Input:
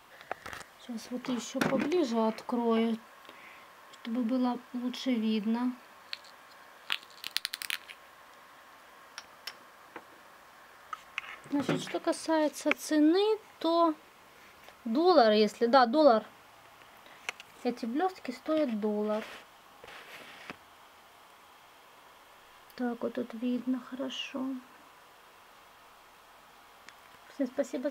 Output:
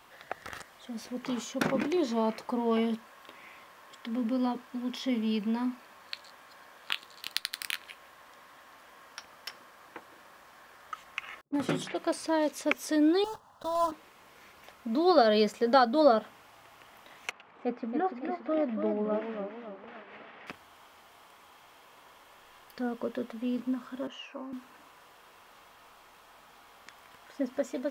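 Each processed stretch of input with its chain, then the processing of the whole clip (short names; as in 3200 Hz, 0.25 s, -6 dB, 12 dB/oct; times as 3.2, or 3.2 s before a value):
11.41–11.99 gate -45 dBFS, range -32 dB + low-pass opened by the level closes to 520 Hz, open at -27.5 dBFS + bell 10000 Hz +7 dB 0.38 oct
13.24–13.92 block floating point 3-bit + LPF 2100 Hz 6 dB/oct + fixed phaser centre 930 Hz, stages 4
17.31–20.47 BPF 100–2000 Hz + bell 130 Hz -5 dB 0.67 oct + warbling echo 0.282 s, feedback 45%, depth 137 cents, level -6.5 dB
24.07–24.53 HPF 390 Hz + high shelf 2800 Hz -11.5 dB + notch 3400 Hz, Q 5.2
whole clip: dry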